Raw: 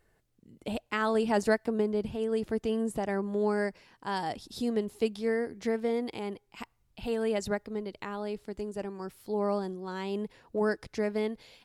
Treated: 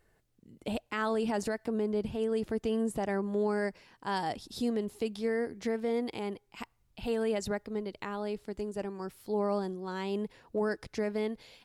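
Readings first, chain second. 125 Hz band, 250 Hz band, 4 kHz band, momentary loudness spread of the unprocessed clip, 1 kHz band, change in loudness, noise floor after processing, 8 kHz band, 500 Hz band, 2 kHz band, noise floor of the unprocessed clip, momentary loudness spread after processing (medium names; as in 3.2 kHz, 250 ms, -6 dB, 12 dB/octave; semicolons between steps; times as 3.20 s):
-1.0 dB, -1.0 dB, -1.0 dB, 10 LU, -1.5 dB, -2.0 dB, -71 dBFS, -0.5 dB, -2.0 dB, -3.0 dB, -71 dBFS, 8 LU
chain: peak limiter -22 dBFS, peak gain reduction 10 dB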